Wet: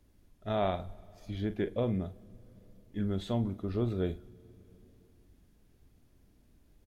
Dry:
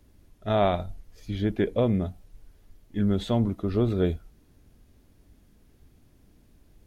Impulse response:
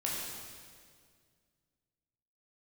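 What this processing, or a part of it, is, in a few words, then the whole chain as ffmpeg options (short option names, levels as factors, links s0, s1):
compressed reverb return: -filter_complex "[0:a]asplit=2[s0][s1];[s1]adelay=42,volume=0.237[s2];[s0][s2]amix=inputs=2:normalize=0,asplit=2[s3][s4];[1:a]atrim=start_sample=2205[s5];[s4][s5]afir=irnorm=-1:irlink=0,acompressor=threshold=0.0355:ratio=6,volume=0.188[s6];[s3][s6]amix=inputs=2:normalize=0,volume=0.398"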